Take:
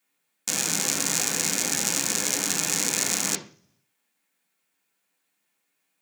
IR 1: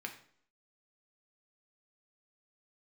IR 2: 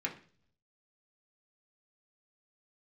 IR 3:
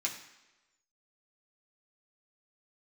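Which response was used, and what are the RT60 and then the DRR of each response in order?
2; 0.60 s, 0.45 s, 1.1 s; 3.0 dB, -2.0 dB, -3.0 dB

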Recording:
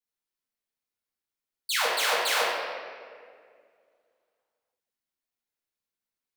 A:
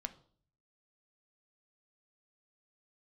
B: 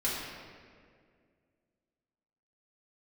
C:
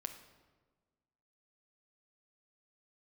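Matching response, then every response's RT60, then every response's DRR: B; 0.50 s, 2.1 s, 1.4 s; 8.5 dB, -8.0 dB, 5.5 dB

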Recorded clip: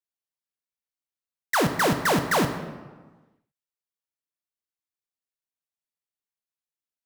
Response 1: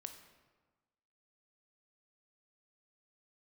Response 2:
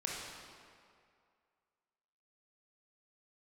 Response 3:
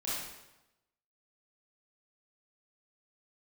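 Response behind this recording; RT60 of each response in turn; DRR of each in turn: 1; 1.3 s, 2.3 s, 0.95 s; 6.0 dB, -3.5 dB, -9.5 dB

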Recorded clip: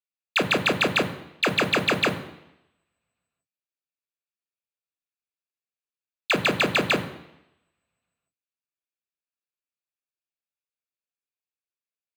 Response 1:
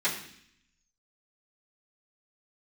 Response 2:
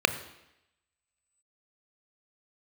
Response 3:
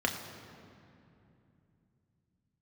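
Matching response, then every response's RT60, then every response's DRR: 2; 0.65 s, 0.85 s, 2.8 s; -13.5 dB, 11.0 dB, 1.5 dB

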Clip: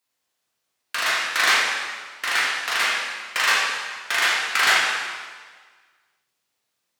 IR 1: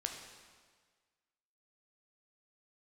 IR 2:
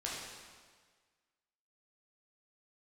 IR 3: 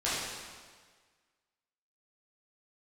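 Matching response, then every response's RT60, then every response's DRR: 2; 1.6 s, 1.6 s, 1.6 s; 2.5 dB, -5.5 dB, -11.0 dB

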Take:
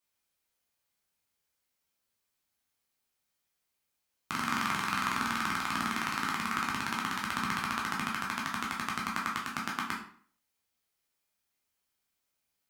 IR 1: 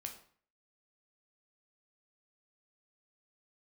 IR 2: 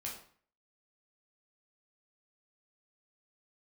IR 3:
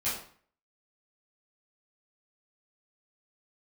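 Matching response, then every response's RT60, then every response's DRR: 2; 0.50 s, 0.50 s, 0.50 s; 3.0 dB, -3.0 dB, -11.5 dB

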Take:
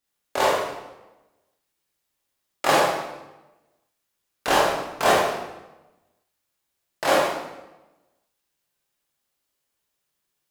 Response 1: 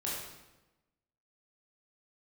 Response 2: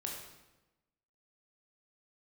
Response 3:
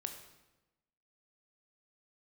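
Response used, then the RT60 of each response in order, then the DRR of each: 1; 1.0 s, 1.0 s, 1.0 s; -6.5 dB, -1.0 dB, 5.0 dB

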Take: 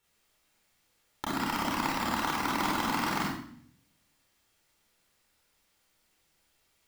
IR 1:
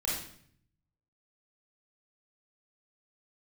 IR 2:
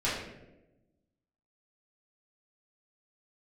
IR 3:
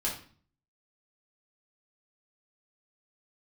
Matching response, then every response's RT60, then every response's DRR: 1; 0.60 s, 1.0 s, 0.45 s; -5.5 dB, -10.0 dB, -5.5 dB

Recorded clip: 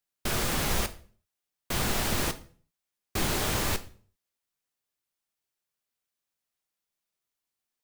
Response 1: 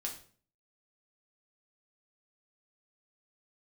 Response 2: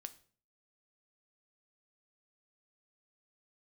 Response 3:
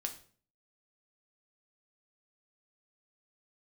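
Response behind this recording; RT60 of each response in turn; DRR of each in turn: 2; 0.45 s, 0.45 s, 0.45 s; -0.5 dB, 10.0 dB, 4.0 dB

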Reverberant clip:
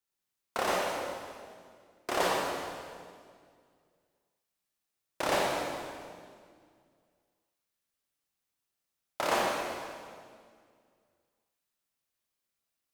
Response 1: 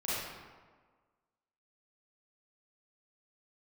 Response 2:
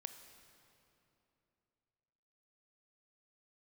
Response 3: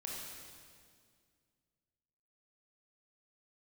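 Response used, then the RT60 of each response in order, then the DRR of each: 3; 1.5 s, 3.0 s, 2.0 s; -10.5 dB, 8.0 dB, -3.5 dB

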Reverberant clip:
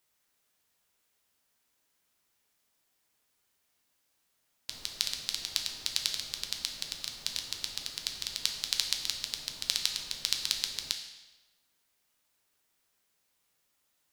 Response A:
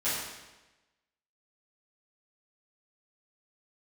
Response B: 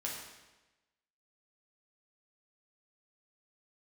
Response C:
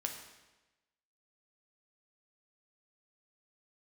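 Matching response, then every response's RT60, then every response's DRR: C; 1.1 s, 1.1 s, 1.1 s; -13.5 dB, -3.5 dB, 2.5 dB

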